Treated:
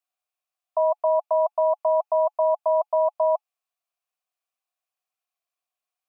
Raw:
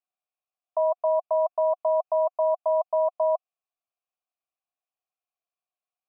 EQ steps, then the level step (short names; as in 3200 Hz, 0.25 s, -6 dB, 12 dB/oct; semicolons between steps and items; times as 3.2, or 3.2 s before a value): HPF 600 Hz; notch 850 Hz, Q 24; +4.5 dB